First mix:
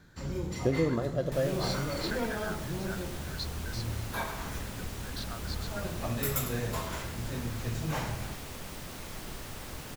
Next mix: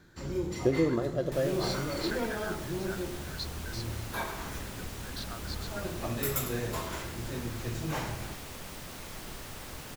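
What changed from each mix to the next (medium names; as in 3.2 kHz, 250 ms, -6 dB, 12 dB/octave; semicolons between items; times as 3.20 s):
first sound: add peaking EQ 350 Hz +7.5 dB 0.4 oct; master: add bass shelf 400 Hz -2.5 dB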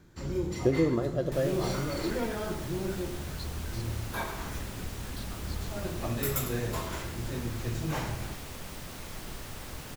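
speech -7.5 dB; master: add bass shelf 180 Hz +4 dB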